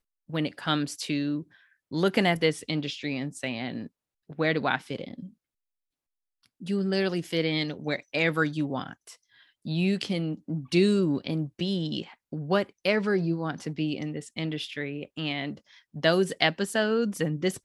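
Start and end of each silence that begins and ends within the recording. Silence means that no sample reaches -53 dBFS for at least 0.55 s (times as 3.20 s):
5.33–6.43 s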